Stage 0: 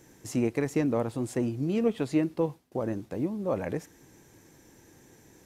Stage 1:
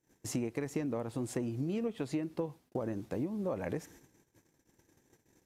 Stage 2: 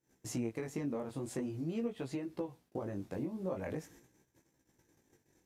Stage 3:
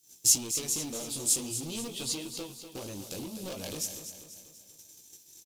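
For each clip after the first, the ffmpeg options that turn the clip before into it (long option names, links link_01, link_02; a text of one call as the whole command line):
ffmpeg -i in.wav -af "agate=range=-27dB:threshold=-53dB:ratio=16:detection=peak,acompressor=threshold=-31dB:ratio=10" out.wav
ffmpeg -i in.wav -af "flanger=delay=15:depth=6.8:speed=0.45" out.wav
ffmpeg -i in.wav -filter_complex "[0:a]asoftclip=type=hard:threshold=-36.5dB,aexciter=amount=10.2:drive=6.9:freq=2800,asplit=2[link_01][link_02];[link_02]aecho=0:1:244|488|732|976|1220:0.316|0.155|0.0759|0.0372|0.0182[link_03];[link_01][link_03]amix=inputs=2:normalize=0" out.wav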